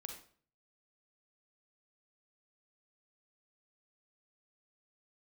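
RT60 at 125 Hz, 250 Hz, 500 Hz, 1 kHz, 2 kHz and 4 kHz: 0.70, 0.55, 0.50, 0.45, 0.40, 0.40 seconds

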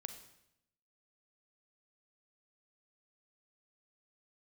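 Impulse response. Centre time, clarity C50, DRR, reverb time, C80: 15 ms, 9.0 dB, 7.5 dB, 0.80 s, 11.5 dB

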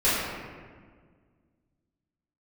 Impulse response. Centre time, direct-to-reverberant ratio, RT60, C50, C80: 112 ms, −14.5 dB, 1.7 s, −2.0 dB, 0.5 dB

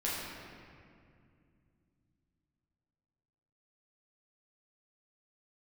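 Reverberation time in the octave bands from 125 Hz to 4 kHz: 4.1, 3.7, 2.5, 2.1, 2.0, 1.4 seconds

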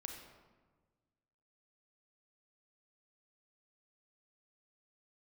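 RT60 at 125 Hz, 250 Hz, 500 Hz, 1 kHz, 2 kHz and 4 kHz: 2.0, 1.8, 1.5, 1.3, 1.1, 0.80 seconds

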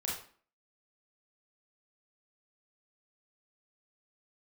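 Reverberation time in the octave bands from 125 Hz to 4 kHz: 0.40, 0.55, 0.45, 0.45, 0.40, 0.35 seconds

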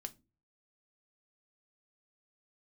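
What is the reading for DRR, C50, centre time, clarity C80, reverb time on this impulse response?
7.5 dB, 22.0 dB, 3 ms, 29.5 dB, non-exponential decay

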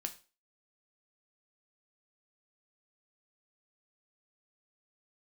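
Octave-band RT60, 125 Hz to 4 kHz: 0.30, 0.35, 0.35, 0.35, 0.30, 0.35 seconds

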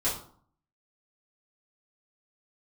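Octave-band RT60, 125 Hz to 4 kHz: 0.70, 0.65, 0.50, 0.55, 0.40, 0.35 seconds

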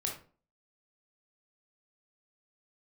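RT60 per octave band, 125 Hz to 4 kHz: 0.45, 0.50, 0.45, 0.35, 0.30, 0.25 seconds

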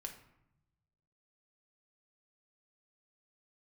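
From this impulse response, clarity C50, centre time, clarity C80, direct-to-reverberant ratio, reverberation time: 9.0 dB, 17 ms, 12.5 dB, 2.5 dB, 0.80 s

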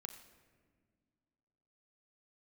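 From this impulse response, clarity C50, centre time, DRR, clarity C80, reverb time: 9.0 dB, 21 ms, 5.0 dB, 10.5 dB, non-exponential decay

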